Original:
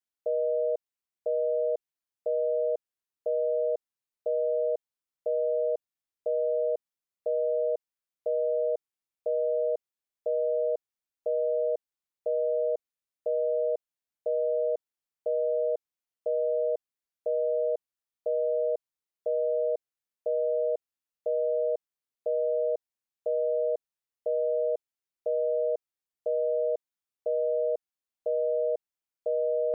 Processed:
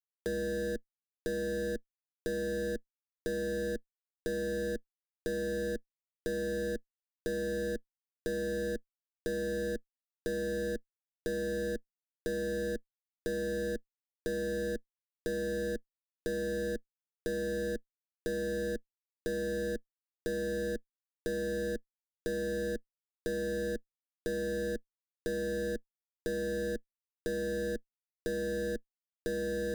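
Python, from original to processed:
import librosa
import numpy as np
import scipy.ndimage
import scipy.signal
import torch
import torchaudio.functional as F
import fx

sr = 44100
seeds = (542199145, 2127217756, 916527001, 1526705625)

y = fx.bass_treble(x, sr, bass_db=8, treble_db=-5)
y = fx.schmitt(y, sr, flips_db=-44.0)
y = fx.curve_eq(y, sr, hz=(160.0, 230.0, 330.0, 480.0, 810.0, 1200.0, 1700.0, 2400.0, 3400.0), db=(0, 9, 2, 2, -21, -28, 2, -28, -6))
y = fx.band_squash(y, sr, depth_pct=70)
y = y * 10.0 ** (-4.5 / 20.0)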